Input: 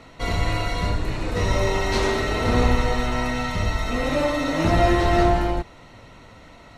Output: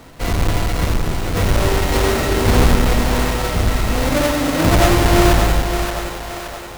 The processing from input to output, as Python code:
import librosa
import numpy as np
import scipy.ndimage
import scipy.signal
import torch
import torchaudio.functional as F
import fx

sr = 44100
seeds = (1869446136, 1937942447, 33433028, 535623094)

y = fx.halfwave_hold(x, sr)
y = fx.echo_split(y, sr, split_hz=420.0, low_ms=231, high_ms=573, feedback_pct=52, wet_db=-6.5)